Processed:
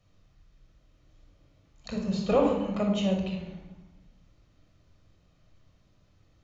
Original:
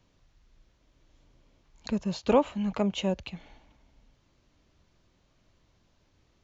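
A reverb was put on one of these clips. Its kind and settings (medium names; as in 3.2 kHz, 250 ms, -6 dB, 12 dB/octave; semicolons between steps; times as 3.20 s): simulated room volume 3200 m³, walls furnished, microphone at 6.3 m; trim -5.5 dB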